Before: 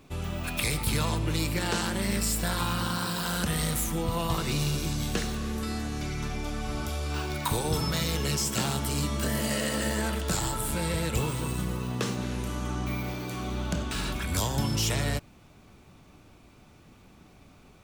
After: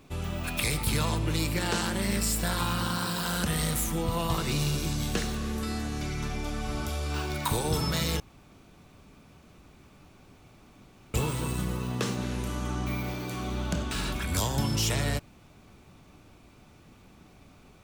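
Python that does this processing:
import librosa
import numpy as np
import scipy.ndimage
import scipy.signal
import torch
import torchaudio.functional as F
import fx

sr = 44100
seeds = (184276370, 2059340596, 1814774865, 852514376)

y = fx.edit(x, sr, fx.room_tone_fill(start_s=8.2, length_s=2.94), tone=tone)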